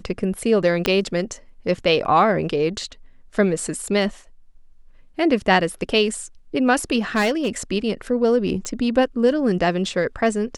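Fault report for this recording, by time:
0:00.86: click −4 dBFS
0:07.15–0:07.48: clipping −15 dBFS
0:08.65: click −16 dBFS

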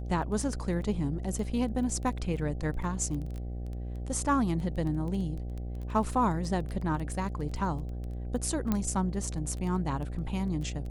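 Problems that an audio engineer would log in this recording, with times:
mains buzz 60 Hz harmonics 13 −36 dBFS
surface crackle 11 per second −34 dBFS
0:08.72: click −15 dBFS

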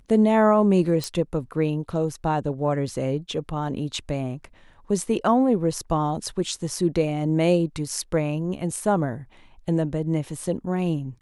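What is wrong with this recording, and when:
0:01.04: click −14 dBFS

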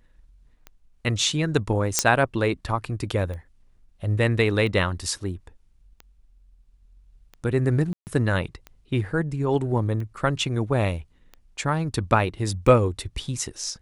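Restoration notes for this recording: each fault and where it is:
scratch tick 45 rpm −25 dBFS
0:01.99: click −1 dBFS
0:07.93–0:08.07: drop-out 139 ms

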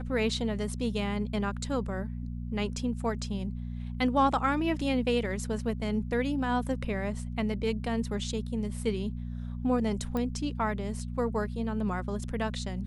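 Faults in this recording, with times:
mains hum 60 Hz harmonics 4 −36 dBFS
0:10.17: click −20 dBFS

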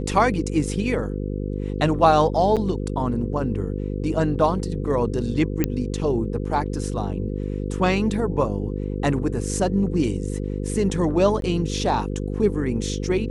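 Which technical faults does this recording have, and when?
mains buzz 50 Hz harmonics 10 −27 dBFS
0:02.56–0:02.57: drop-out 7.4 ms
0:05.64: click −7 dBFS
0:11.41–0:11.42: drop-out 12 ms

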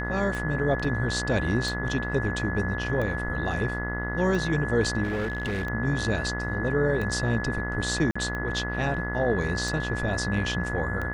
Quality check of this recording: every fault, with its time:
mains buzz 60 Hz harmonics 34 −32 dBFS
scratch tick 45 rpm
whistle 1,700 Hz −32 dBFS
0:00.84: drop-out 3.7 ms
0:05.03–0:05.67: clipping −25 dBFS
0:08.11–0:08.15: drop-out 45 ms

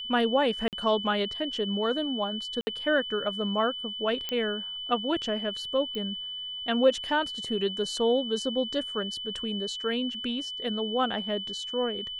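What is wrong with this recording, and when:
whistle 3,000 Hz −34 dBFS
0:00.68–0:00.73: drop-out 48 ms
0:02.61–0:02.67: drop-out 60 ms
0:04.29: click −16 dBFS
0:05.95: click −22 dBFS

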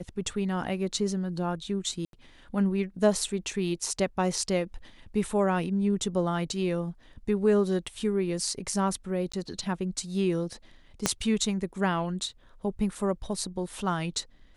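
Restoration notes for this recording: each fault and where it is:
0:02.05–0:02.13: drop-out 82 ms
0:09.32–0:09.34: drop-out 15 ms
0:11.06: click −7 dBFS

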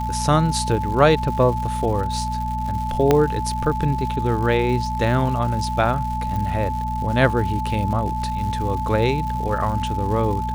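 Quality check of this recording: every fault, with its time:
surface crackle 240 per second −30 dBFS
mains hum 60 Hz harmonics 4 −27 dBFS
whistle 870 Hz −25 dBFS
0:03.11: click −3 dBFS
0:06.36: click

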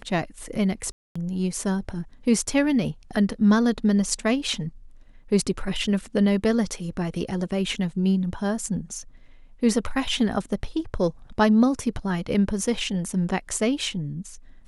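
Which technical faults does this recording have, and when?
0:00.92–0:01.16: drop-out 235 ms

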